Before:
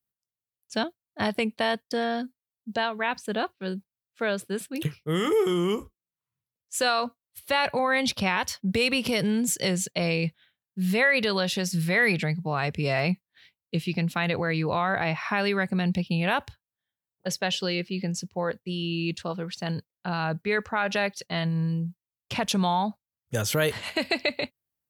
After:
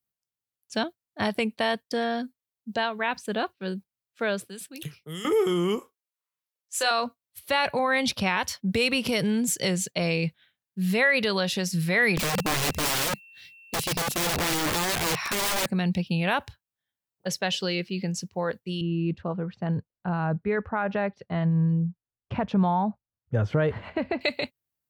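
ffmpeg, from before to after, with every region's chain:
-filter_complex "[0:a]asettb=1/sr,asplit=3[s0][s1][s2];[s0]atrim=end=4.494[s3];[s1]atrim=start=4.49:end=5.25,asetpts=PTS-STARTPTS,afade=t=in:d=0.004:c=qsin,afade=t=out:st=0.756:d=0.004:c=qsin,lowshelf=f=140:g=-12,acrossover=split=170|3000[s4][s5][s6];[s5]acompressor=threshold=0.00501:ratio=3:attack=3.2:release=140:knee=2.83:detection=peak[s7];[s4][s7][s6]amix=inputs=3:normalize=0[s8];[s2]atrim=start=5.246[s9];[s3][s8]acrossfade=d=0.004:c1=hsin:c2=qsin[s10];[s10][s9]acrossfade=d=0.004:c1=qsin:c2=hsin,asettb=1/sr,asplit=3[s11][s12][s13];[s11]atrim=end=5.794[s14];[s12]atrim=start=5.79:end=6.91,asetpts=PTS-STARTPTS,afade=t=in:d=0.004:c=qsin,afade=t=out:st=1.116:d=0.004:c=qsin,highpass=530,asplit=2[s15][s16];[s16]adelay=27,volume=0.398[s17];[s15][s17]amix=inputs=2:normalize=0,atrim=end_sample=49392[s18];[s13]atrim=start=6.906[s19];[s14][s18]acrossfade=d=0.004:c1=hsin:c2=qsin[s20];[s20][s19]acrossfade=d=0.004:c1=qsin:c2=hsin,asettb=1/sr,asplit=3[s21][s22][s23];[s21]atrim=end=12.174[s24];[s22]atrim=start=12.17:end=15.66,asetpts=PTS-STARTPTS,afade=t=in:d=0.004:c=qsin,afade=t=out:st=3.486:d=0.004:c=qsin,bass=f=250:g=8,treble=f=4000:g=14,aeval=exprs='val(0)+0.00355*sin(2*PI*2700*n/s)':c=same,aeval=exprs='(mod(11.9*val(0)+1,2)-1)/11.9':c=same[s25];[s23]atrim=start=15.656[s26];[s24][s25]acrossfade=d=0.004:c1=hsin:c2=qsin[s27];[s27][s26]acrossfade=d=0.004:c1=qsin:c2=hsin,asettb=1/sr,asplit=3[s28][s29][s30];[s28]atrim=end=18.814[s31];[s29]atrim=start=18.81:end=24.21,asetpts=PTS-STARTPTS,afade=t=in:d=0.004:c=qsin,afade=t=out:st=5.396:d=0.004:c=qsin,lowpass=1400,lowshelf=f=120:g=10.5[s32];[s30]atrim=start=24.206[s33];[s31][s32]acrossfade=d=0.004:c1=hsin:c2=qsin[s34];[s34][s33]acrossfade=d=0.004:c1=qsin:c2=hsin"

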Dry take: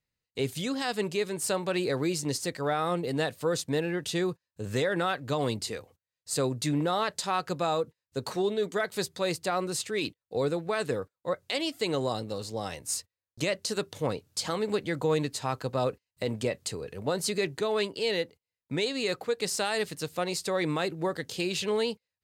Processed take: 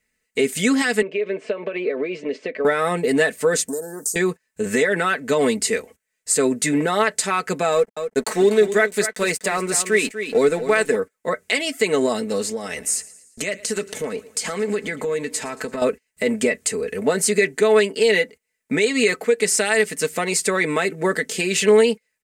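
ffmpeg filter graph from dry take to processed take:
-filter_complex "[0:a]asettb=1/sr,asplit=3[s0][s1][s2];[s0]atrim=end=1.024[s3];[s1]atrim=start=1.02:end=2.65,asetpts=PTS-STARTPTS,afade=t=in:d=0.004:c=qsin,afade=t=out:st=1.626:d=0.004:c=qsin,highpass=340,equalizer=f=570:t=q:w=4:g=7,equalizer=f=840:t=q:w=4:g=-10,equalizer=f=1400:t=q:w=4:g=-10,equalizer=f=1900:t=q:w=4:g=-8,lowpass=f=2700:w=0.5412,lowpass=f=2700:w=1.3066,acompressor=threshold=0.0251:ratio=12:attack=3.2:release=140:knee=1:detection=peak[s4];[s2]atrim=start=2.646[s5];[s3][s4]acrossfade=d=0.004:c1=hsin:c2=qsin[s6];[s6][s5]acrossfade=d=0.004:c1=qsin:c2=hsin,asettb=1/sr,asplit=3[s7][s8][s9];[s7]atrim=end=3.684[s10];[s8]atrim=start=3.68:end=4.16,asetpts=PTS-STARTPTS,afade=t=in:d=0.004:c=qsin,afade=t=out:st=0.476:d=0.004:c=qsin,aemphasis=mode=production:type=riaa,acompressor=threshold=0.0178:ratio=10:attack=3.2:release=140:knee=1:detection=peak,asuperstop=centerf=2600:order=8:qfactor=0.65[s11];[s9]atrim=start=4.156[s12];[s10][s11]acrossfade=d=0.004:c1=hsin:c2=qsin[s13];[s13][s12]acrossfade=d=0.004:c1=qsin:c2=hsin,asettb=1/sr,asplit=3[s14][s15][s16];[s14]atrim=end=7.724[s17];[s15]atrim=start=7.72:end=10.96,asetpts=PTS-STARTPTS,afade=t=in:d=0.004:c=qsin,afade=t=out:st=3.236:d=0.004:c=qsin,lowshelf=f=140:g=-3,aeval=exprs='sgn(val(0))*max(abs(val(0))-0.00355,0)':c=same,aecho=1:1:245:0.282,atrim=end_sample=142884[s18];[s16]atrim=start=10.956[s19];[s17][s18]acrossfade=d=0.004:c1=hsin:c2=qsin[s20];[s20][s19]acrossfade=d=0.004:c1=qsin:c2=hsin,asettb=1/sr,asplit=3[s21][s22][s23];[s21]atrim=end=12.494[s24];[s22]atrim=start=12.49:end=15.82,asetpts=PTS-STARTPTS,afade=t=in:d=0.004:c=qsin,afade=t=out:st=3.326:d=0.004:c=qsin,acompressor=threshold=0.0158:ratio=4:attack=3.2:release=140:knee=1:detection=peak,aecho=1:1:113|226|339|452:0.106|0.0551|0.0286|0.0149,atrim=end_sample=146853[s25];[s23]atrim=start=15.816[s26];[s24][s25]acrossfade=d=0.004:c1=hsin:c2=qsin[s27];[s27][s26]acrossfade=d=0.004:c1=qsin:c2=hsin,equalizer=f=125:t=o:w=1:g=-8,equalizer=f=250:t=o:w=1:g=5,equalizer=f=500:t=o:w=1:g=4,equalizer=f=1000:t=o:w=1:g=-4,equalizer=f=2000:t=o:w=1:g=12,equalizer=f=4000:t=o:w=1:g=-7,equalizer=f=8000:t=o:w=1:g=10,alimiter=limit=0.133:level=0:latency=1:release=306,aecho=1:1:4.6:0.67,volume=2.51"

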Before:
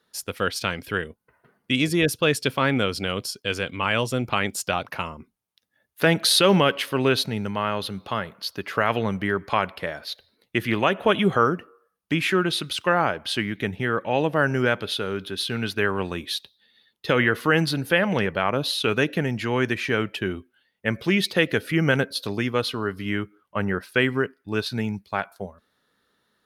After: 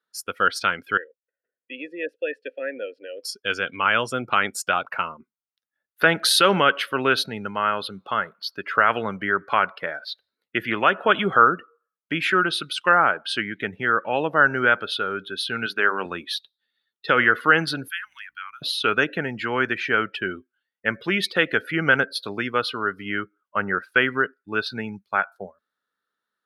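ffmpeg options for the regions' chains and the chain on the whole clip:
-filter_complex "[0:a]asettb=1/sr,asplit=3[s0][s1][s2];[s0]atrim=end=0.974[s3];[s1]atrim=start=0.97:end=3.23,asetpts=PTS-STARTPTS,afade=t=in:d=0.004:c=qsin,afade=t=out:st=2.256:d=0.004:c=qsin,asplit=3[s4][s5][s6];[s4]bandpass=f=530:t=q:w=8,volume=1[s7];[s5]bandpass=f=1840:t=q:w=8,volume=0.501[s8];[s6]bandpass=f=2480:t=q:w=8,volume=0.355[s9];[s7][s8][s9]amix=inputs=3:normalize=0,equalizer=f=290:w=2.4:g=9[s10];[s2]atrim=start=3.226[s11];[s3][s10]acrossfade=d=0.004:c1=hsin:c2=qsin[s12];[s12][s11]acrossfade=d=0.004:c1=qsin:c2=hsin,asettb=1/sr,asplit=3[s13][s14][s15];[s13]atrim=end=15.664[s16];[s14]atrim=start=15.66:end=16.06,asetpts=PTS-STARTPTS,afade=t=in:d=0.004:c=qsin,afade=t=out:st=0.396:d=0.004:c=qsin,highpass=180,bandreject=f=50:t=h:w=6,bandreject=f=100:t=h:w=6,bandreject=f=150:t=h:w=6,bandreject=f=200:t=h:w=6,bandreject=f=250:t=h:w=6,bandreject=f=300:t=h:w=6,bandreject=f=350:t=h:w=6,bandreject=f=400:t=h:w=6,bandreject=f=450:t=h:w=6,bandreject=f=500:t=h:w=6[s17];[s15]atrim=start=16.056[s18];[s16][s17]acrossfade=d=0.004:c1=hsin:c2=qsin[s19];[s19][s18]acrossfade=d=0.004:c1=qsin:c2=hsin,asettb=1/sr,asplit=3[s20][s21][s22];[s20]atrim=end=17.884[s23];[s21]atrim=start=17.88:end=18.62,asetpts=PTS-STARTPTS,afade=t=in:d=0.004:c=qsin,afade=t=out:st=0.736:d=0.004:c=qsin,highpass=f=980:w=0.5412,highpass=f=980:w=1.3066,aderivative,aeval=exprs='val(0)+0.00178*(sin(2*PI*60*n/s)+sin(2*PI*2*60*n/s)/2+sin(2*PI*3*60*n/s)/3+sin(2*PI*4*60*n/s)/4+sin(2*PI*5*60*n/s)/5)':c=same[s24];[s22]atrim=start=18.616[s25];[s23][s24]acrossfade=d=0.004:c1=hsin:c2=qsin[s26];[s26][s25]acrossfade=d=0.004:c1=qsin:c2=hsin,highpass=f=320:p=1,afftdn=nr=17:nf=-39,equalizer=f=1400:w=2.8:g=9.5"

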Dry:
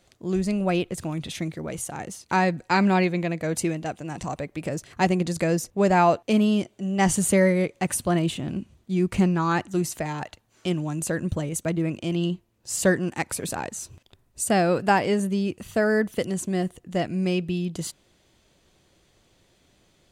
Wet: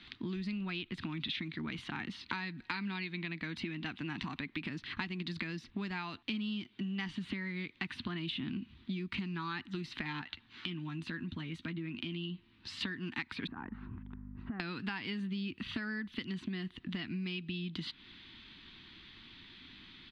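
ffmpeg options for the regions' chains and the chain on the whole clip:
-filter_complex "[0:a]asettb=1/sr,asplit=3[s0][s1][s2];[s0]atrim=end=10.214[s3];[s1]atrim=start=10.21:end=12.81,asetpts=PTS-STARTPTS,afade=t=in:d=0.004:c=qsin,afade=t=out:st=2.596:d=0.004:c=qsin,acompressor=threshold=0.00562:ratio=2:attack=3.2:release=140:knee=1:detection=peak,asplit=2[s4][s5];[s5]adelay=12,volume=0.355[s6];[s4][s6]amix=inputs=2:normalize=0,atrim=end_sample=114660[s7];[s2]atrim=start=12.806[s8];[s3][s7]acrossfade=d=0.004:c1=hsin:c2=qsin[s9];[s9][s8]acrossfade=d=0.004:c1=qsin:c2=hsin,asettb=1/sr,asplit=3[s10][s11][s12];[s10]atrim=end=13.474[s13];[s11]atrim=start=13.47:end=14.6,asetpts=PTS-STARTPTS,afade=t=in:d=0.004:c=qsin,afade=t=out:st=1.126:d=0.004:c=qsin,lowpass=f=1400:w=0.5412,lowpass=f=1400:w=1.3066,aeval=exprs='val(0)+0.00447*(sin(2*PI*50*n/s)+sin(2*PI*2*50*n/s)/2+sin(2*PI*3*50*n/s)/3+sin(2*PI*4*50*n/s)/4+sin(2*PI*5*50*n/s)/5)':c=same,acompressor=threshold=0.0126:ratio=5:attack=3.2:release=140:knee=1:detection=peak[s14];[s12]atrim=start=14.596[s15];[s13][s14]acrossfade=d=0.004:c1=hsin:c2=qsin[s16];[s16][s15]acrossfade=d=0.004:c1=qsin:c2=hsin,acrossover=split=100|4500[s17][s18][s19];[s17]acompressor=threshold=0.00251:ratio=4[s20];[s18]acompressor=threshold=0.0316:ratio=4[s21];[s19]acompressor=threshold=0.00891:ratio=4[s22];[s20][s21][s22]amix=inputs=3:normalize=0,firequalizer=gain_entry='entry(150,0);entry(250,9);entry(550,-20);entry(940,3);entry(1800,10);entry(3800,13);entry(6700,-21);entry(12000,-28)':delay=0.05:min_phase=1,acompressor=threshold=0.01:ratio=4,volume=1.26"

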